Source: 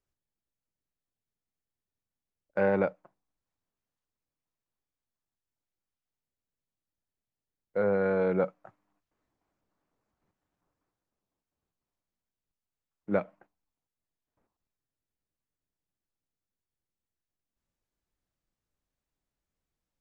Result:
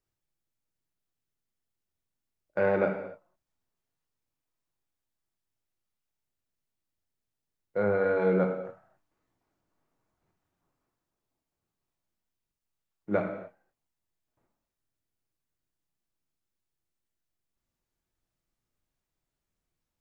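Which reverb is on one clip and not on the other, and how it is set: gated-style reverb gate 310 ms falling, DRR 2.5 dB

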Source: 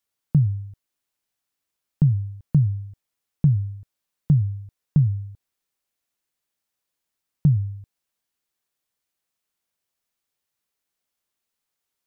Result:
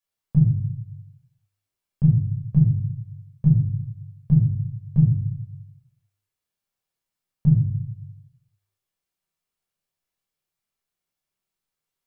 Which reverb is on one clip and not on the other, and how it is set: simulated room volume 720 m³, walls furnished, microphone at 5.6 m; trim -10.5 dB

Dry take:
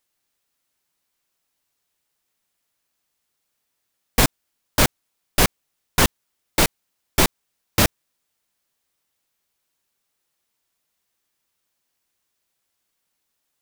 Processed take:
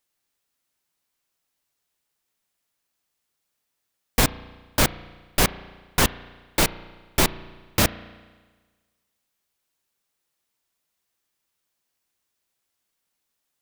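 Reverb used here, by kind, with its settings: spring tank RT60 1.4 s, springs 34 ms, chirp 25 ms, DRR 16 dB; trim -2.5 dB

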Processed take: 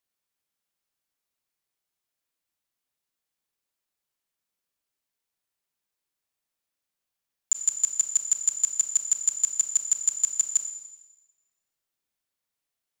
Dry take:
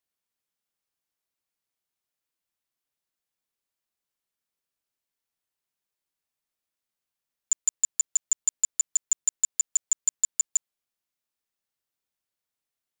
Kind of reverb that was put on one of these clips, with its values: Schroeder reverb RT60 1.1 s, combs from 28 ms, DRR 7.5 dB; trim +1 dB

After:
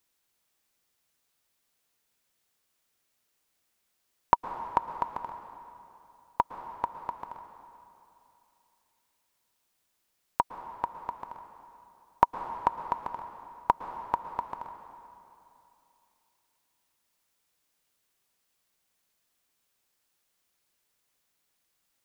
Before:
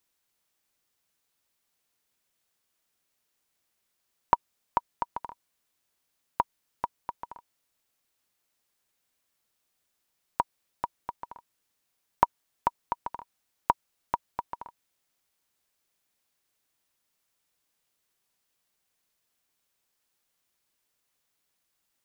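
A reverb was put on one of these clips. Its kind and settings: plate-style reverb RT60 2.9 s, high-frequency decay 0.85×, pre-delay 100 ms, DRR 8.5 dB; trim +1 dB

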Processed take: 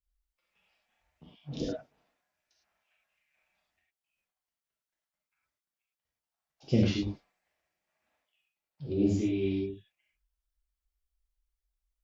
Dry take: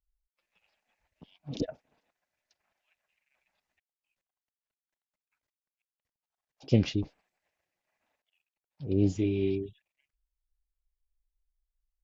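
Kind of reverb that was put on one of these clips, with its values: gated-style reverb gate 130 ms flat, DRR -4.5 dB; trim -5 dB

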